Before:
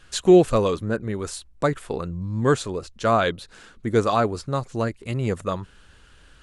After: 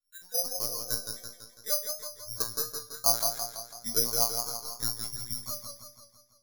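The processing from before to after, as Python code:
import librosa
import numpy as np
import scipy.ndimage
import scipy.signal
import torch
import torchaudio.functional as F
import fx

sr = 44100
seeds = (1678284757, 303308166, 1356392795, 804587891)

y = fx.local_reverse(x, sr, ms=109.0)
y = fx.dereverb_blind(y, sr, rt60_s=0.79)
y = fx.hum_notches(y, sr, base_hz=50, count=8)
y = fx.noise_reduce_blind(y, sr, reduce_db=28)
y = fx.dynamic_eq(y, sr, hz=2700.0, q=4.3, threshold_db=-53.0, ratio=4.0, max_db=-6)
y = fx.transient(y, sr, attack_db=8, sustain_db=-9)
y = fx.resonator_bank(y, sr, root=46, chord='fifth', decay_s=0.32)
y = fx.lpc_vocoder(y, sr, seeds[0], excitation='pitch_kept', order=10)
y = (np.kron(scipy.signal.resample_poly(y, 1, 8), np.eye(8)[0]) * 8)[:len(y)]
y = fx.echo_warbled(y, sr, ms=166, feedback_pct=55, rate_hz=2.8, cents=66, wet_db=-5.5)
y = y * librosa.db_to_amplitude(-7.0)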